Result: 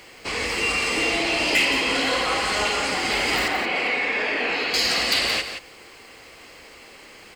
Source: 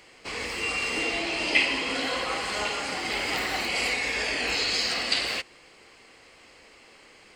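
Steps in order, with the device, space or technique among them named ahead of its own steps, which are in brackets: open-reel tape (saturation -21.5 dBFS, distortion -14 dB; peaking EQ 65 Hz +2 dB; white noise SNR 38 dB); 3.48–4.74 s: three-band isolator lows -19 dB, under 160 Hz, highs -20 dB, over 3.2 kHz; delay 173 ms -9 dB; trim +7 dB

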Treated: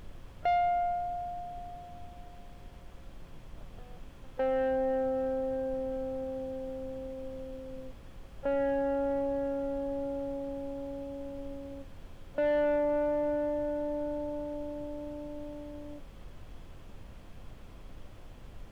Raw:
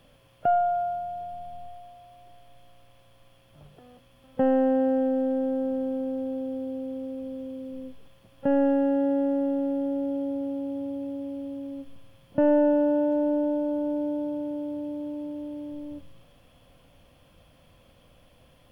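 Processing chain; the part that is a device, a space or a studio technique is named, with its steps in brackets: aircraft cabin announcement (band-pass 480–3000 Hz; saturation -23.5 dBFS, distortion -14 dB; brown noise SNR 11 dB)

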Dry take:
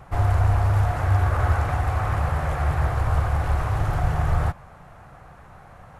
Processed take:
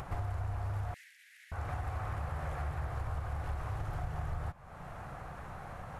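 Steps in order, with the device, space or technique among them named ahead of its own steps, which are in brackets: upward and downward compression (upward compressor, threshold -37 dBFS; compression 5:1, threshold -34 dBFS, peak gain reduction 16.5 dB); 0.94–1.52 s: steep high-pass 1.8 kHz 72 dB/octave; trim -1.5 dB

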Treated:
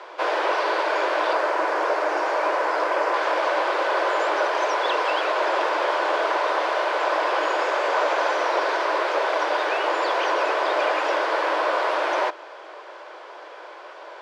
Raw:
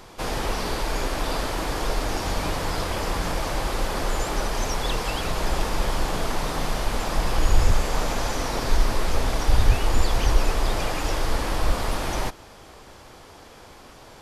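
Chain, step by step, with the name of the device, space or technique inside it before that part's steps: Chebyshev high-pass 310 Hz, order 8; 1.33–3.14 s: peaking EQ 3.5 kHz -7 dB 0.82 oct; tin-can telephone (band-pass 420–2900 Hz; small resonant body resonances 600/1000/1500 Hz, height 7 dB, ringing for 30 ms); trim +6.5 dB

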